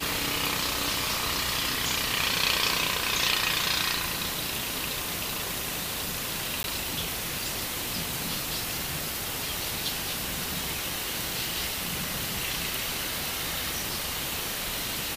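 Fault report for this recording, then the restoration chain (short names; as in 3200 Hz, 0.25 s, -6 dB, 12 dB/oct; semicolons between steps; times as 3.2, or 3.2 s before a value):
6.63–6.64 gap 11 ms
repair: interpolate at 6.63, 11 ms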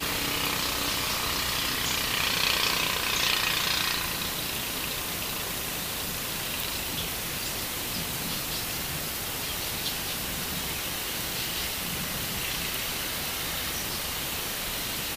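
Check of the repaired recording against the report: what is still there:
none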